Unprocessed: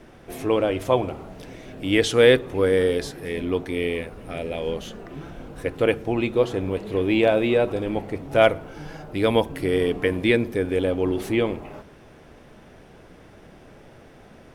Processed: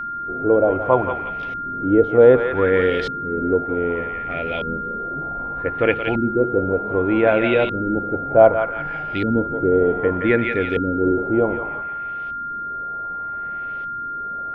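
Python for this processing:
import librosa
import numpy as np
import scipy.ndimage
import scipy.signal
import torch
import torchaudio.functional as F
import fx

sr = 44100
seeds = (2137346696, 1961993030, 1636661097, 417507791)

y = fx.echo_thinned(x, sr, ms=173, feedback_pct=37, hz=790.0, wet_db=-6.0)
y = fx.filter_lfo_lowpass(y, sr, shape='saw_up', hz=0.65, low_hz=220.0, high_hz=3500.0, q=1.7)
y = y + 10.0 ** (-27.0 / 20.0) * np.sin(2.0 * np.pi * 1400.0 * np.arange(len(y)) / sr)
y = y * librosa.db_to_amplitude(1.5)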